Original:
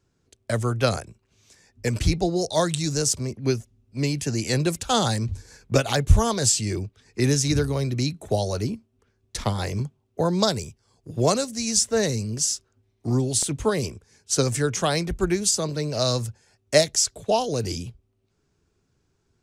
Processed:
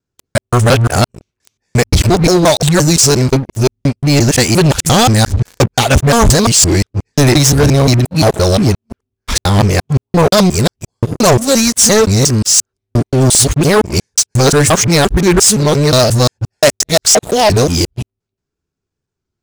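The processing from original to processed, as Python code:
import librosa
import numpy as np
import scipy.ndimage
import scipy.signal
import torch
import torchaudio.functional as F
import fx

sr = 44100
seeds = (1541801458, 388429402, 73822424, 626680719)

y = fx.local_reverse(x, sr, ms=175.0)
y = fx.leveller(y, sr, passes=5)
y = fx.record_warp(y, sr, rpm=33.33, depth_cents=100.0)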